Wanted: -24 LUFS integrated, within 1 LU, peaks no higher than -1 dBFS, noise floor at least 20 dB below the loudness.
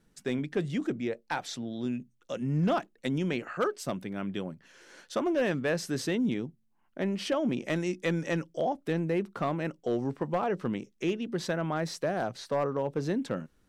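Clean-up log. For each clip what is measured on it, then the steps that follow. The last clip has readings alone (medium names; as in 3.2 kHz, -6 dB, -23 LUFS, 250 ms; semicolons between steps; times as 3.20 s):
clipped samples 0.4%; clipping level -21.0 dBFS; loudness -31.5 LUFS; peak level -21.0 dBFS; loudness target -24.0 LUFS
-> clip repair -21 dBFS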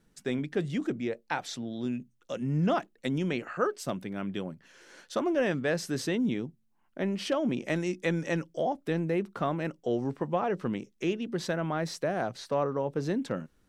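clipped samples 0.0%; loudness -31.5 LUFS; peak level -15.0 dBFS; loudness target -24.0 LUFS
-> trim +7.5 dB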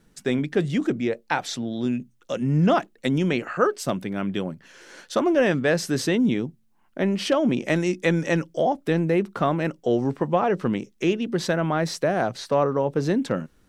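loudness -24.0 LUFS; peak level -7.5 dBFS; noise floor -61 dBFS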